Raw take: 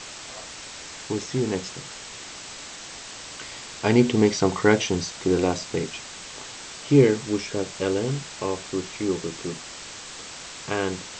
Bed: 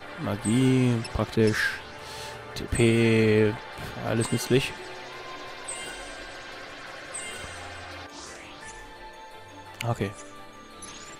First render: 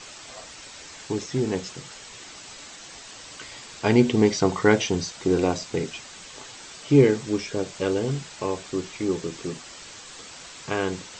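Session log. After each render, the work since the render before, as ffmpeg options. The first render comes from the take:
-af "afftdn=nr=6:nf=-40"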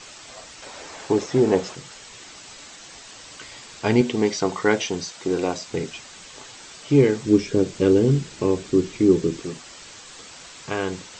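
-filter_complex "[0:a]asettb=1/sr,asplit=3[a][b][c];[a]atrim=end=0.624[d];[b]atrim=start=0.62:end=1.75,asetpts=PTS-STARTPTS,afade=t=in:d=0.004:c=qsin,afade=t=out:st=1.126:d=0.004:c=qsin,equalizer=f=620:t=o:w=2.5:g=11[e];[c]atrim=start=1.746[f];[d][e]acrossfade=d=0.004:c1=hsin:c2=qsin[g];[g][f]acrossfade=d=0.004:c1=qsin:c2=hsin,asettb=1/sr,asplit=3[h][i][j];[h]atrim=end=4.014[k];[i]atrim=start=4.01:end=5.68,asetpts=PTS-STARTPTS,afade=t=in:d=0.004:c=qsin,afade=t=out:st=1.666:d=0.004:c=qsin,highpass=f=240:p=1[l];[j]atrim=start=5.676[m];[k][l]acrossfade=d=0.004:c1=hsin:c2=qsin[n];[n][m]acrossfade=d=0.004:c1=qsin:c2=hsin,asettb=1/sr,asplit=3[o][p][q];[o]atrim=end=7.254[r];[p]atrim=start=7.25:end=9.4,asetpts=PTS-STARTPTS,afade=t=in:d=0.004:c=qsin,afade=t=out:st=2.146:d=0.004:c=qsin,lowshelf=f=500:t=q:w=1.5:g=8[s];[q]atrim=start=9.396[t];[r][s]acrossfade=d=0.004:c1=hsin:c2=qsin[u];[u][t]acrossfade=d=0.004:c1=qsin:c2=hsin"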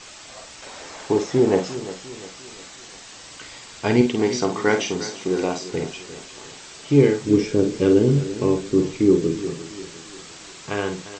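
-filter_complex "[0:a]asplit=2[a][b];[b]adelay=49,volume=-7.5dB[c];[a][c]amix=inputs=2:normalize=0,aecho=1:1:350|700|1050|1400:0.188|0.0829|0.0365|0.016"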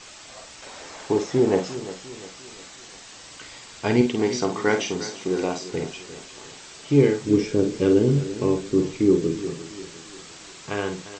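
-af "volume=-2dB"

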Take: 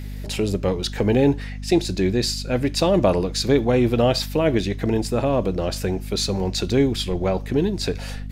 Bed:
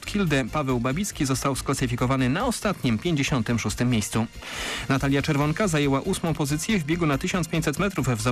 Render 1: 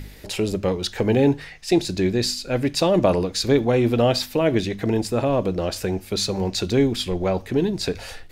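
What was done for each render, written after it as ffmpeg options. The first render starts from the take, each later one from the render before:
-af "bandreject=f=50:t=h:w=4,bandreject=f=100:t=h:w=4,bandreject=f=150:t=h:w=4,bandreject=f=200:t=h:w=4,bandreject=f=250:t=h:w=4"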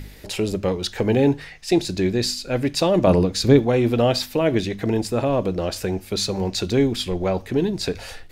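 -filter_complex "[0:a]asettb=1/sr,asplit=3[a][b][c];[a]atrim=end=3.074[d];[b]atrim=start=3.07:end=3.6,asetpts=PTS-STARTPTS,afade=t=in:d=0.004:c=qsin,afade=t=out:st=0.526:d=0.004:c=qsin,equalizer=f=130:w=0.41:g=7.5[e];[c]atrim=start=3.596[f];[d][e]acrossfade=d=0.004:c1=hsin:c2=qsin[g];[g][f]acrossfade=d=0.004:c1=qsin:c2=hsin"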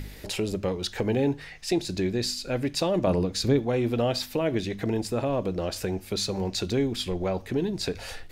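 -af "acompressor=threshold=-34dB:ratio=1.5"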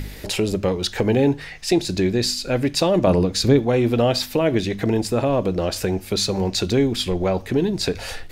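-af "volume=7dB"

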